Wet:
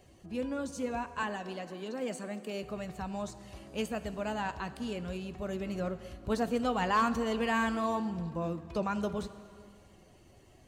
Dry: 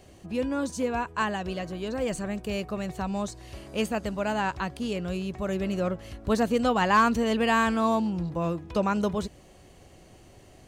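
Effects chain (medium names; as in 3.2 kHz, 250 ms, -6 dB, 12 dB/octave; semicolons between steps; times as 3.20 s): coarse spectral quantiser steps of 15 dB; 1.23–2.63 s: steep high-pass 180 Hz; plate-style reverb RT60 2.3 s, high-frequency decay 0.8×, DRR 12.5 dB; trim -6.5 dB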